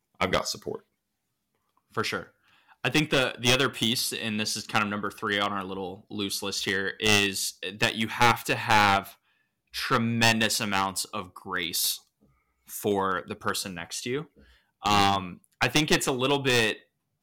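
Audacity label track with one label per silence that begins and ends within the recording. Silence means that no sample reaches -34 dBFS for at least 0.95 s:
0.760000	1.950000	silence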